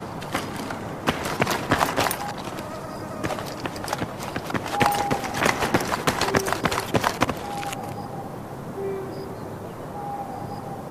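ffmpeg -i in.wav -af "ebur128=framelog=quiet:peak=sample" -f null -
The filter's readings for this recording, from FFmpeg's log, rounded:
Integrated loudness:
  I:         -26.5 LUFS
  Threshold: -36.5 LUFS
Loudness range:
  LRA:         7.5 LU
  Threshold: -46.0 LUFS
  LRA low:   -30.9 LUFS
  LRA high:  -23.4 LUFS
Sample peak:
  Peak:       -1.7 dBFS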